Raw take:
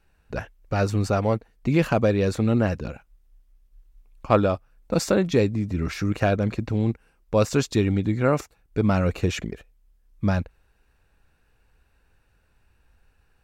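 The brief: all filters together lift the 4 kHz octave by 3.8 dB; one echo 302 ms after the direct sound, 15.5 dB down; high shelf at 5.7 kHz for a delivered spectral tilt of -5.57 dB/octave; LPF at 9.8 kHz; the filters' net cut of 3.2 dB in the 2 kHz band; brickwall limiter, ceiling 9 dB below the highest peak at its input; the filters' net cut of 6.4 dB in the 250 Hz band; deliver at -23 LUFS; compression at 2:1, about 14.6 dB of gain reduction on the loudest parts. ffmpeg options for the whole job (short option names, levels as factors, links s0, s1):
-af "lowpass=9800,equalizer=f=250:t=o:g=-9,equalizer=f=2000:t=o:g=-6,equalizer=f=4000:t=o:g=9,highshelf=f=5700:g=-6.5,acompressor=threshold=0.00708:ratio=2,alimiter=level_in=2.24:limit=0.0631:level=0:latency=1,volume=0.447,aecho=1:1:302:0.168,volume=9.44"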